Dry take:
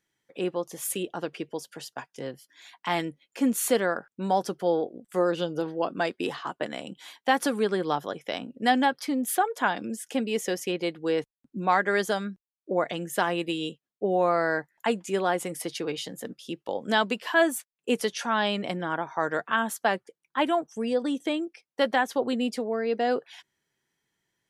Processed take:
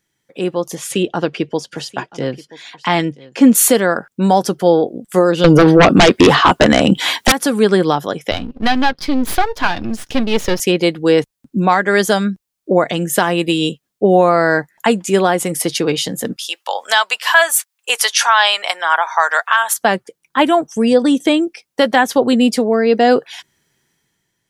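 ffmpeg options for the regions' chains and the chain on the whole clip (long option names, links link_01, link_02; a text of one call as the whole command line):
ffmpeg -i in.wav -filter_complex "[0:a]asettb=1/sr,asplit=3[link_01][link_02][link_03];[link_01]atrim=end=0.754[link_04];[link_02]atrim=start=0.75:end=3.55,asetpts=PTS-STARTPTS,afade=type=in:duration=0.004:curve=qsin,afade=type=out:start_time=2.796:duration=0.004:curve=qsin,lowpass=5200,aecho=1:1:980:0.106,atrim=end_sample=123480[link_05];[link_03]atrim=start=3.546[link_06];[link_04][link_05]acrossfade=duration=0.004:curve1=hsin:curve2=qsin[link_07];[link_07][link_06]acrossfade=duration=0.004:curve1=qsin:curve2=hsin,asettb=1/sr,asplit=3[link_08][link_09][link_10];[link_08]atrim=end=5.444[link_11];[link_09]atrim=start=5.44:end=7.32,asetpts=PTS-STARTPTS,afade=type=in:duration=0.004:curve=qsin,afade=type=out:start_time=1.876:duration=0.004:curve=qsin,acrossover=split=3900[link_12][link_13];[link_13]acompressor=threshold=-60dB:ratio=4:attack=1:release=60[link_14];[link_12][link_14]amix=inputs=2:normalize=0,aeval=exprs='0.335*sin(PI/2*5.62*val(0)/0.335)':channel_layout=same[link_15];[link_10]atrim=start=7.316[link_16];[link_11][link_15]acrossfade=duration=0.004:curve1=hsin:curve2=qsin[link_17];[link_17][link_16]acrossfade=duration=0.004:curve1=qsin:curve2=hsin,asettb=1/sr,asplit=3[link_18][link_19][link_20];[link_18]atrim=end=8.314[link_21];[link_19]atrim=start=8.31:end=10.6,asetpts=PTS-STARTPTS,afade=type=in:duration=0.004:curve=qsin,afade=type=out:start_time=2.286:duration=0.004:curve=qsin,aeval=exprs='if(lt(val(0),0),0.251*val(0),val(0))':channel_layout=same,highshelf=frequency=6100:width_type=q:width=1.5:gain=-8.5[link_22];[link_20]atrim=start=10.596[link_23];[link_21][link_22]acrossfade=duration=0.004:curve1=hsin:curve2=qsin[link_24];[link_24][link_23]acrossfade=duration=0.004:curve1=qsin:curve2=hsin,asettb=1/sr,asplit=3[link_25][link_26][link_27];[link_25]atrim=end=16.364[link_28];[link_26]atrim=start=16.36:end=19.74,asetpts=PTS-STARTPTS,afade=type=in:duration=0.004:curve=qsin,afade=type=out:start_time=3.376:duration=0.004:curve=qsin,highpass=frequency=800:width=0.5412,highpass=frequency=800:width=1.3066,acontrast=31[link_29];[link_27]atrim=start=19.736[link_30];[link_28][link_29]acrossfade=duration=0.004:curve1=hsin:curve2=qsin[link_31];[link_31][link_30]acrossfade=duration=0.004:curve1=qsin:curve2=hsin,bass=frequency=250:gain=5,treble=frequency=4000:gain=4,alimiter=limit=-14.5dB:level=0:latency=1:release=423,dynaudnorm=framelen=110:gausssize=11:maxgain=7.5dB,volume=6dB" out.wav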